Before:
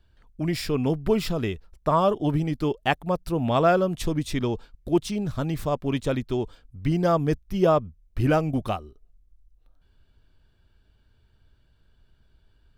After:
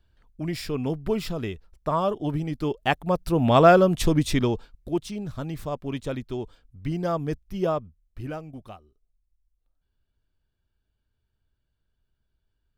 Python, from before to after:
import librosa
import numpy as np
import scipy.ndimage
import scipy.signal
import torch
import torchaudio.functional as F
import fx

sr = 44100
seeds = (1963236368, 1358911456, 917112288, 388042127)

y = fx.gain(x, sr, db=fx.line((2.42, -3.5), (3.59, 5.0), (4.3, 5.0), (4.98, -5.0), (7.65, -5.0), (8.48, -15.0)))